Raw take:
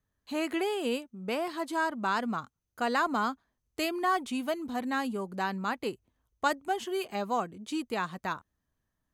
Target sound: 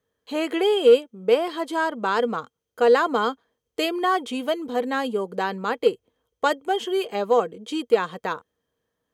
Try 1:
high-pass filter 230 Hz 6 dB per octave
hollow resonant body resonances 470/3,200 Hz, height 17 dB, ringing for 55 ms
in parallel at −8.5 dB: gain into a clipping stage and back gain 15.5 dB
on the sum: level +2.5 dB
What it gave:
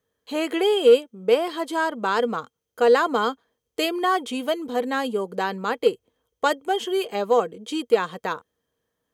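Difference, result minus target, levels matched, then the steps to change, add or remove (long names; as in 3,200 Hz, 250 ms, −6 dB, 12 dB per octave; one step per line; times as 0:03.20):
8,000 Hz band +3.0 dB
add after high-pass filter: high-shelf EQ 5,900 Hz −4.5 dB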